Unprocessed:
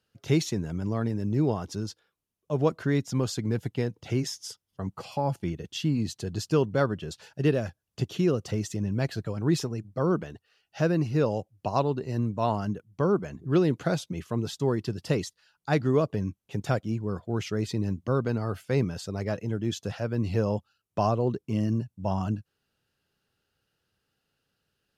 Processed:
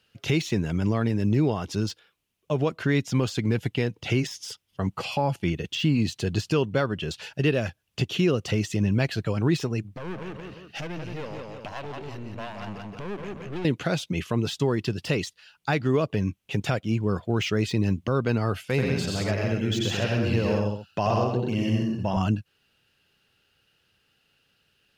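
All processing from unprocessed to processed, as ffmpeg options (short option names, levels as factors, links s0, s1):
-filter_complex "[0:a]asettb=1/sr,asplit=3[s0][s1][s2];[s0]atrim=end=9.874[s3];[s1]atrim=start=9.87:end=13.65,asetpts=PTS-STARTPTS,afade=t=in:d=0.004:c=qsin,afade=t=out:st=3.776:d=0.004:c=qsin,aecho=1:1:173|346|519:0.447|0.121|0.0326,atrim=end_sample=166698,acompressor=threshold=0.01:ratio=2.5:attack=3.2:release=140:knee=1:detection=peak,aeval=exprs='clip(val(0),-1,0.00531)':c=same[s4];[s2]atrim=start=13.646[s5];[s3][s4]acrossfade=d=0.004:c1=hsin:c2=qsin[s6];[s6][s5]acrossfade=d=0.004:c1=qsin:c2=hsin,asettb=1/sr,asplit=3[s7][s8][s9];[s7]atrim=end=18.614[s10];[s8]atrim=start=18.61:end=22.17,asetpts=PTS-STARTPTS,afade=t=in:d=0.004:c=qsin,afade=t=out:st=3.556:d=0.004:c=qsin,acompressor=threshold=0.0158:ratio=1.5:attack=3.2:release=140:knee=1:detection=peak,aecho=1:1:88|128|186|254:0.631|0.668|0.531|0.251,atrim=end_sample=156996[s11];[s9]atrim=start=22.166[s12];[s10][s11]acrossfade=d=0.004:c1=hsin:c2=qsin[s13];[s13][s12]acrossfade=d=0.004:c1=qsin:c2=hsin,alimiter=limit=0.106:level=0:latency=1:release=293,equalizer=f=2700:t=o:w=1.1:g=9.5,deesser=0.95,volume=2"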